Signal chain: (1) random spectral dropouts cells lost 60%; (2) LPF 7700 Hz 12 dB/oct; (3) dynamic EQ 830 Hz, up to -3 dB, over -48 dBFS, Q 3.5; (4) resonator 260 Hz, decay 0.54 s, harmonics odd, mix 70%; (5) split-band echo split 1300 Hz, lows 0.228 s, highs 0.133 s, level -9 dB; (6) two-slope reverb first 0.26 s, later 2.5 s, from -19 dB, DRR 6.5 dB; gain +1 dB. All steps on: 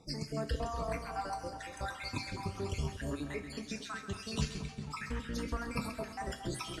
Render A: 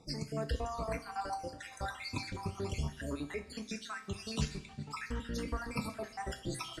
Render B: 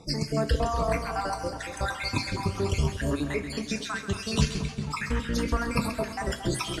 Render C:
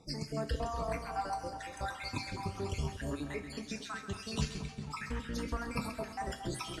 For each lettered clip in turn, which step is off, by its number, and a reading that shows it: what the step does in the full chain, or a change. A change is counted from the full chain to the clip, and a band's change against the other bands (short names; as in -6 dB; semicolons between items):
5, echo-to-direct -3.5 dB to -6.5 dB; 4, loudness change +10.0 LU; 3, 1 kHz band +1.5 dB